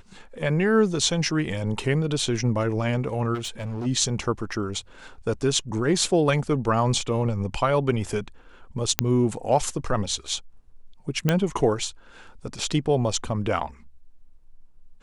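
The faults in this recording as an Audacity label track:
3.340000	3.870000	clipping −27 dBFS
8.990000	8.990000	click −1 dBFS
11.290000	11.290000	click −7 dBFS

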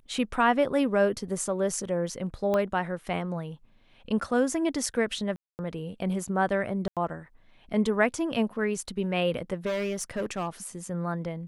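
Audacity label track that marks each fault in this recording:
2.540000	2.540000	click −16 dBFS
5.360000	5.590000	drop-out 229 ms
6.880000	6.970000	drop-out 87 ms
9.660000	10.490000	clipping −26 dBFS

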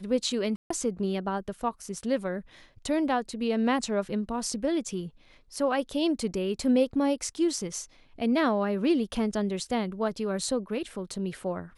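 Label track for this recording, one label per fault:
0.560000	0.700000	drop-out 144 ms

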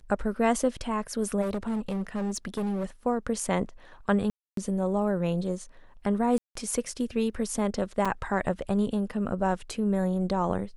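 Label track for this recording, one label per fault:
1.410000	2.850000	clipping −26 dBFS
4.300000	4.570000	drop-out 273 ms
6.380000	6.550000	drop-out 174 ms
8.050000	8.060000	drop-out 5.2 ms

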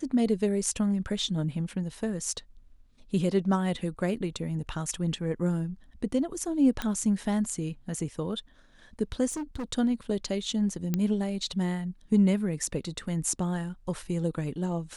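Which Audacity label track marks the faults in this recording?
6.820000	6.820000	click −15 dBFS
9.290000	9.640000	clipping −30.5 dBFS
10.940000	10.940000	click −14 dBFS

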